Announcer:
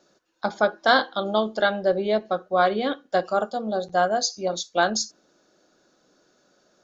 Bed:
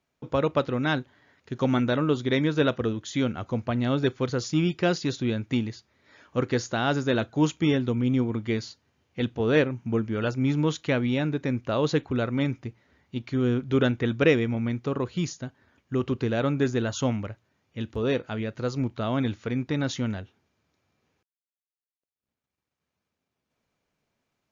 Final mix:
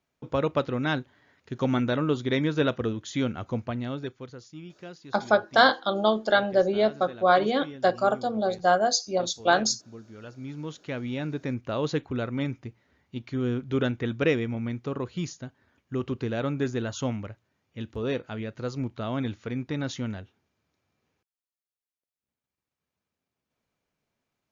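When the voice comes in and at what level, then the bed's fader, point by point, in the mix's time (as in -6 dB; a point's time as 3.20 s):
4.70 s, 0.0 dB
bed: 3.56 s -1.5 dB
4.52 s -19 dB
10.00 s -19 dB
11.39 s -3.5 dB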